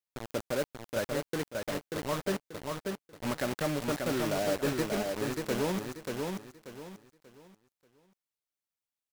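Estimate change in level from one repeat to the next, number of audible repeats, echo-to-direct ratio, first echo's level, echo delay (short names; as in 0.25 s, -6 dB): -10.5 dB, 3, -3.5 dB, -4.0 dB, 0.586 s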